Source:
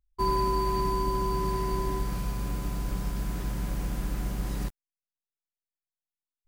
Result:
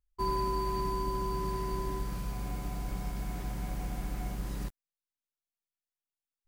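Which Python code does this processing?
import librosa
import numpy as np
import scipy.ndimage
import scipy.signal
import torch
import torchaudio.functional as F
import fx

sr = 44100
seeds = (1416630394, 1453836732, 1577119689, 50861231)

y = fx.small_body(x, sr, hz=(740.0, 2200.0), ring_ms=45, db=10, at=(2.31, 4.35))
y = y * 10.0 ** (-5.0 / 20.0)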